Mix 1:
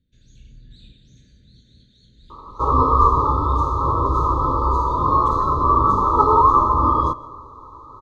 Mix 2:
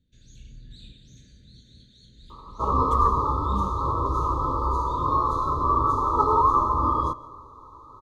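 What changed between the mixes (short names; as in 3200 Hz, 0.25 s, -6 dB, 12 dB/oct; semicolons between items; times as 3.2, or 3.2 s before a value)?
speech: entry -2.35 s; second sound -6.0 dB; master: add high shelf 7700 Hz +11 dB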